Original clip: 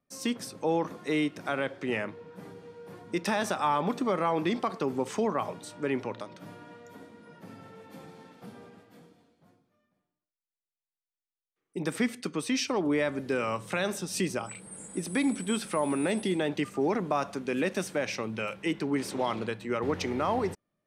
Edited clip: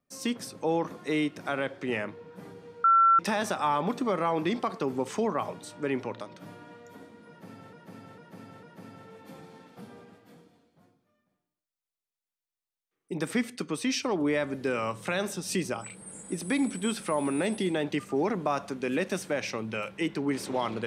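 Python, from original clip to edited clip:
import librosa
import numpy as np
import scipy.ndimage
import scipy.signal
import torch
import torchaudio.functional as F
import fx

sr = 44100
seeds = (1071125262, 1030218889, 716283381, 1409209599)

y = fx.edit(x, sr, fx.bleep(start_s=2.84, length_s=0.35, hz=1350.0, db=-16.5),
    fx.repeat(start_s=7.28, length_s=0.45, count=4), tone=tone)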